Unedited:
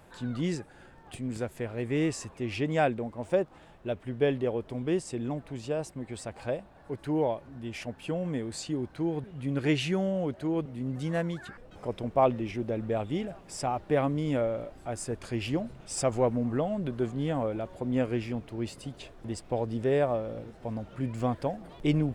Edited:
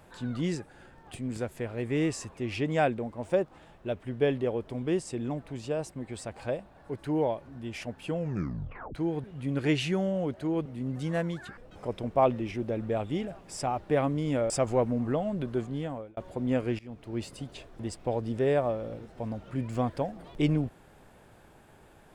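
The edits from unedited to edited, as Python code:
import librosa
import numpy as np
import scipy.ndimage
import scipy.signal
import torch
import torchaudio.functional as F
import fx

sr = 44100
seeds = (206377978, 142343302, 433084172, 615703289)

y = fx.edit(x, sr, fx.tape_stop(start_s=8.16, length_s=0.79),
    fx.cut(start_s=14.5, length_s=1.45),
    fx.fade_out_span(start_s=16.83, length_s=0.79, curve='qsin'),
    fx.fade_in_from(start_s=18.24, length_s=0.39, floor_db=-20.5), tone=tone)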